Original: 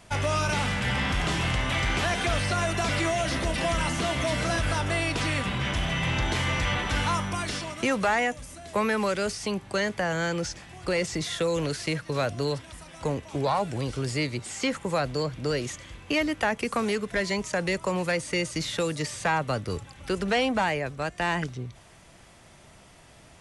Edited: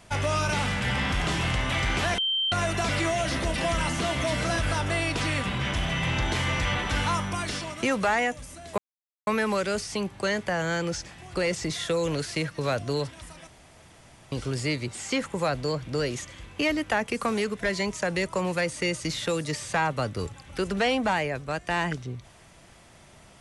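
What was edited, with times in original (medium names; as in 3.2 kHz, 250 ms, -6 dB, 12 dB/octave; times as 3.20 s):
2.18–2.52 s: bleep 3.13 kHz -23 dBFS
8.78 s: insert silence 0.49 s
12.98–13.83 s: room tone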